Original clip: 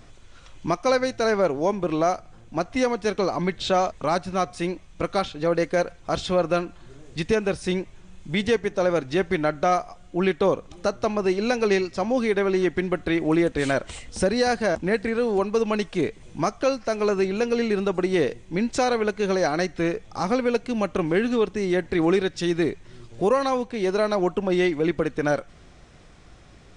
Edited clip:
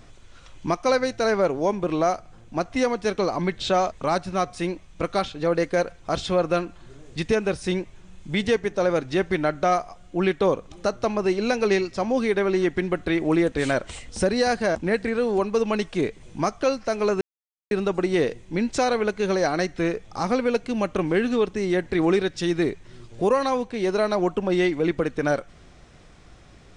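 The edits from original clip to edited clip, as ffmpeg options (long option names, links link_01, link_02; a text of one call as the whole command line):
ffmpeg -i in.wav -filter_complex "[0:a]asplit=3[link_01][link_02][link_03];[link_01]atrim=end=17.21,asetpts=PTS-STARTPTS,afade=type=out:start_time=17.206:duration=0.004:curve=hsin[link_04];[link_02]atrim=start=17.21:end=17.71,asetpts=PTS-STARTPTS,volume=0[link_05];[link_03]atrim=start=17.71,asetpts=PTS-STARTPTS,afade=type=in:duration=0.004:curve=hsin[link_06];[link_04][link_05][link_06]concat=n=3:v=0:a=1" out.wav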